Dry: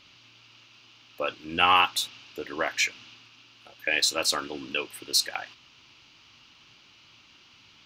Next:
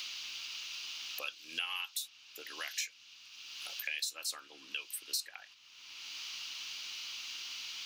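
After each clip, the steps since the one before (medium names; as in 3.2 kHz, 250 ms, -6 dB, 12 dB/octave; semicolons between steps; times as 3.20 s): pre-emphasis filter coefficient 0.97; three bands compressed up and down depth 100%; trim -3 dB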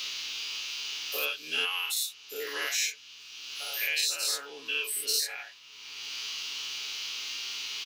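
every event in the spectrogram widened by 120 ms; peaking EQ 440 Hz +11.5 dB 0.25 oct; comb 7.1 ms, depth 81%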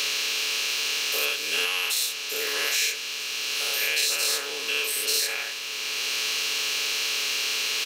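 spectral levelling over time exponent 0.4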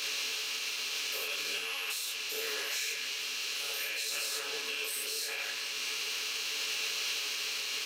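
repeats whose band climbs or falls 174 ms, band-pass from 1.5 kHz, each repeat 0.7 oct, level -9 dB; peak limiter -20.5 dBFS, peak gain reduction 10.5 dB; detune thickener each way 25 cents; trim -1.5 dB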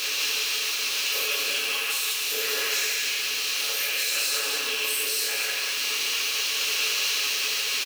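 zero-crossing glitches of -39.5 dBFS; delay 190 ms -4 dB; reverberation RT60 0.55 s, pre-delay 5 ms, DRR 5.5 dB; trim +6 dB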